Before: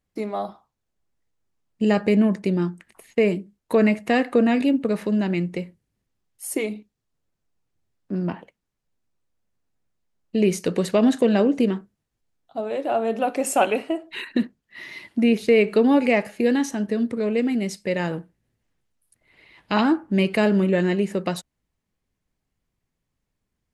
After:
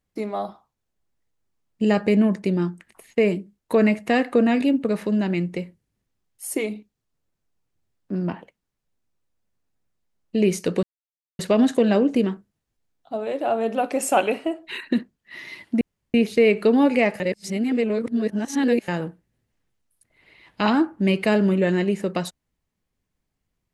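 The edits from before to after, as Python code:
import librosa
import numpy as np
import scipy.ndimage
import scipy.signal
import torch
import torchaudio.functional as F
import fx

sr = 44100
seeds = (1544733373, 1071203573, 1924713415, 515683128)

y = fx.edit(x, sr, fx.insert_silence(at_s=10.83, length_s=0.56),
    fx.insert_room_tone(at_s=15.25, length_s=0.33),
    fx.reverse_span(start_s=16.31, length_s=1.68), tone=tone)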